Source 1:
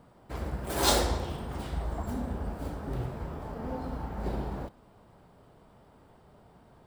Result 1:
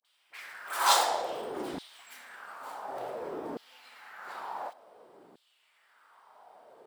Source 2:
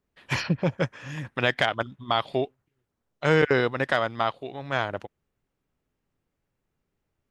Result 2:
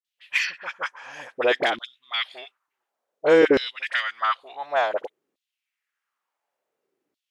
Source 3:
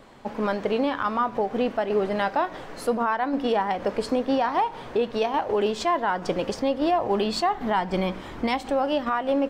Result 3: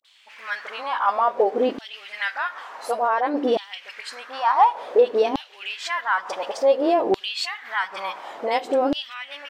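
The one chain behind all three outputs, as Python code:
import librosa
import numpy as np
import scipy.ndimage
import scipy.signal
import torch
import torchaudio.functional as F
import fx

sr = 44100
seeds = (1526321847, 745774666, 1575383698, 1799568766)

y = fx.dispersion(x, sr, late='highs', ms=41.0, hz=1100.0)
y = fx.vibrato(y, sr, rate_hz=0.67, depth_cents=63.0)
y = fx.filter_lfo_highpass(y, sr, shape='saw_down', hz=0.56, low_hz=280.0, high_hz=3800.0, q=2.9)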